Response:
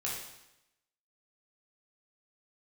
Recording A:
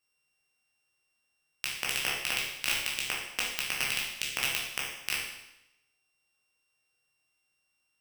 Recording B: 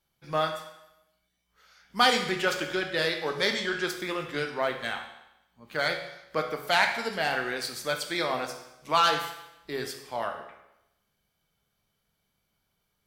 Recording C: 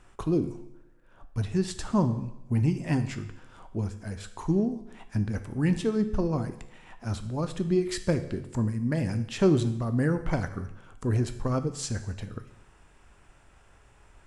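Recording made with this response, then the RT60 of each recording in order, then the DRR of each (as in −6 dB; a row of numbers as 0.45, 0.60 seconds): A; 0.90, 0.90, 0.90 seconds; −5.5, 3.5, 9.0 decibels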